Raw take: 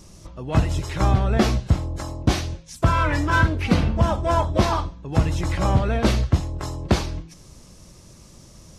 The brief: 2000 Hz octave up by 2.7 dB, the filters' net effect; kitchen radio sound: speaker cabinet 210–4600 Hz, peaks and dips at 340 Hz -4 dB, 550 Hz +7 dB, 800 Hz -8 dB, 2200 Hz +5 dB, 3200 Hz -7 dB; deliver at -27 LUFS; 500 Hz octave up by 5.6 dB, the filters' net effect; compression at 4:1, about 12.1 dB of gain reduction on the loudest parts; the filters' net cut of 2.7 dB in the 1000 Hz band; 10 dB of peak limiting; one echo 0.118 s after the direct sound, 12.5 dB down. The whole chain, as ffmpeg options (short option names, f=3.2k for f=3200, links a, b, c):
-af "equalizer=f=500:t=o:g=6,equalizer=f=1k:t=o:g=-3.5,equalizer=f=2k:t=o:g=3.5,acompressor=threshold=-27dB:ratio=4,alimiter=limit=-22.5dB:level=0:latency=1,highpass=210,equalizer=f=340:t=q:w=4:g=-4,equalizer=f=550:t=q:w=4:g=7,equalizer=f=800:t=q:w=4:g=-8,equalizer=f=2.2k:t=q:w=4:g=5,equalizer=f=3.2k:t=q:w=4:g=-7,lowpass=f=4.6k:w=0.5412,lowpass=f=4.6k:w=1.3066,aecho=1:1:118:0.237,volume=8.5dB"